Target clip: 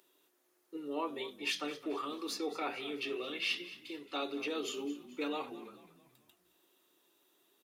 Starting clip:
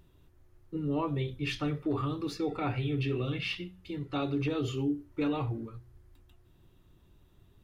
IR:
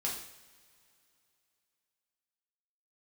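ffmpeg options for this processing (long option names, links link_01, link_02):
-filter_complex "[0:a]highpass=frequency=330:width=0.5412,highpass=frequency=330:width=1.3066,highshelf=frequency=3800:gain=12,asplit=5[link_01][link_02][link_03][link_04][link_05];[link_02]adelay=219,afreqshift=-41,volume=-15.5dB[link_06];[link_03]adelay=438,afreqshift=-82,volume=-22.4dB[link_07];[link_04]adelay=657,afreqshift=-123,volume=-29.4dB[link_08];[link_05]adelay=876,afreqshift=-164,volume=-36.3dB[link_09];[link_01][link_06][link_07][link_08][link_09]amix=inputs=5:normalize=0,volume=-3.5dB"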